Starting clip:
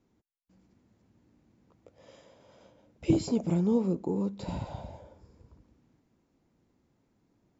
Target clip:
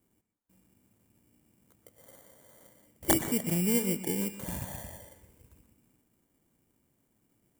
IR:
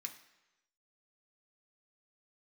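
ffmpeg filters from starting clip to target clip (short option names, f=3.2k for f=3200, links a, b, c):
-filter_complex "[0:a]acrusher=samples=17:mix=1:aa=0.000001,aeval=exprs='(mod(5.62*val(0)+1,2)-1)/5.62':c=same,aexciter=amount=5.6:drive=4.2:freq=6.8k,asplit=2[a][b];[1:a]atrim=start_sample=2205,highshelf=f=5.5k:g=-11.5,adelay=121[c];[b][c]afir=irnorm=-1:irlink=0,volume=-5dB[d];[a][d]amix=inputs=2:normalize=0,volume=-3dB"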